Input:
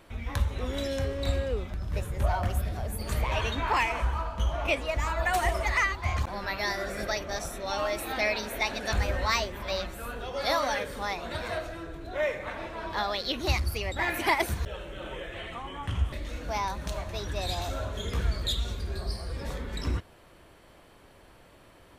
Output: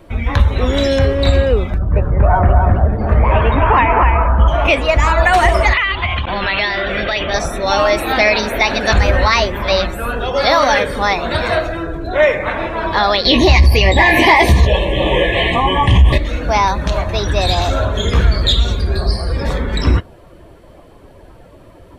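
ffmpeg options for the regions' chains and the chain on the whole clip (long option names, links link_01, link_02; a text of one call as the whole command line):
ffmpeg -i in.wav -filter_complex "[0:a]asettb=1/sr,asplit=3[link_01][link_02][link_03];[link_01]atrim=end=1.784[link_04];[link_02]atrim=start=1.78:end=4.48,asetpts=PTS-STARTPTS,afade=type=in:duration=0.004:curve=qsin,afade=type=out:start_time=2.696:duration=0.004:curve=qsin,lowpass=1600,aecho=1:1:259:0.668,atrim=end_sample=119070[link_05];[link_03]atrim=start=4.476[link_06];[link_04][link_05]acrossfade=duration=0.004:curve1=hsin:curve2=qsin[link_07];[link_07][link_06]acrossfade=duration=0.004:curve1=qsin:curve2=hsin,asettb=1/sr,asplit=3[link_08][link_09][link_10];[link_08]atrim=end=5.734[link_11];[link_09]atrim=start=5.73:end=7.34,asetpts=PTS-STARTPTS,afade=type=in:duration=0.004:curve=qsin,afade=type=out:start_time=1.606:duration=0.004:curve=qsin,acompressor=threshold=-32dB:ratio=12:attack=3.2:release=140:knee=1:detection=peak,lowpass=frequency=3100:width_type=q:width=4.6[link_12];[link_10]atrim=start=7.336[link_13];[link_11][link_12]acrossfade=duration=0.004:curve1=hsin:curve2=qsin[link_14];[link_14][link_13]acrossfade=duration=0.004:curve1=qsin:curve2=hsin,asettb=1/sr,asplit=3[link_15][link_16][link_17];[link_15]atrim=end=13.254[link_18];[link_16]atrim=start=13.25:end=16.18,asetpts=PTS-STARTPTS,afade=type=in:duration=0.004:curve=qsin,afade=type=out:start_time=2.926:duration=0.004:curve=qsin,asuperstop=centerf=1400:order=20:qfactor=2.9,asplit=2[link_19][link_20];[link_20]adelay=16,volume=-6.5dB[link_21];[link_19][link_21]amix=inputs=2:normalize=0,atrim=end_sample=129213,aeval=exprs='0.299*sin(PI/2*1.41*val(0)/0.299)':channel_layout=same[link_22];[link_17]atrim=start=16.176[link_23];[link_18][link_22]acrossfade=duration=0.004:curve1=hsin:curve2=qsin[link_24];[link_24][link_23]acrossfade=duration=0.004:curve1=qsin:curve2=hsin,acrossover=split=5000[link_25][link_26];[link_26]acompressor=threshold=-46dB:ratio=4:attack=1:release=60[link_27];[link_25][link_27]amix=inputs=2:normalize=0,afftdn=noise_reduction=13:noise_floor=-51,alimiter=level_in=18dB:limit=-1dB:release=50:level=0:latency=1,volume=-1dB" out.wav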